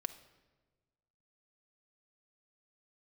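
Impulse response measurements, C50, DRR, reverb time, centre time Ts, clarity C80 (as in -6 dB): 13.0 dB, 8.5 dB, 1.3 s, 7 ms, 15.5 dB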